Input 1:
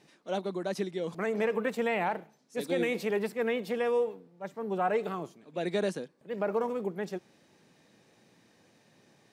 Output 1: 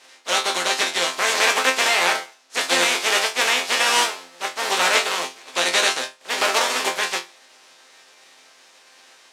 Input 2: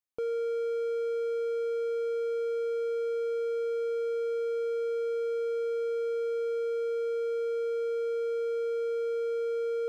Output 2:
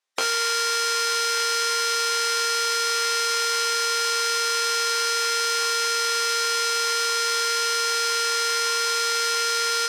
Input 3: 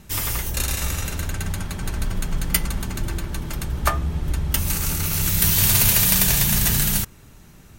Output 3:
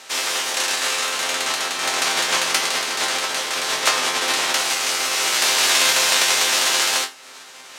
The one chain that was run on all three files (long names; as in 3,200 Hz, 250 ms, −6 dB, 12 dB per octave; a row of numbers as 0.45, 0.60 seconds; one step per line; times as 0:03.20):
compressing power law on the bin magnitudes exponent 0.28
in parallel at −1 dB: downward compressor, threshold −31 dBFS
on the sum: band-pass filter 490–6,600 Hz
resonators tuned to a chord F2 fifth, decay 0.24 s
normalise the peak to −3 dBFS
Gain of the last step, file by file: +19.5, +19.0, +13.5 decibels